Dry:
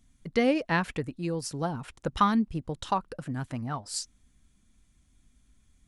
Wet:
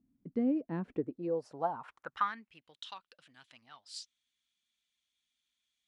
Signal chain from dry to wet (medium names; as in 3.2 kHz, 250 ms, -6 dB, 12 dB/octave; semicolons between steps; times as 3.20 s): band-pass sweep 270 Hz -> 3.4 kHz, 0.80–2.79 s; gain riding within 3 dB 0.5 s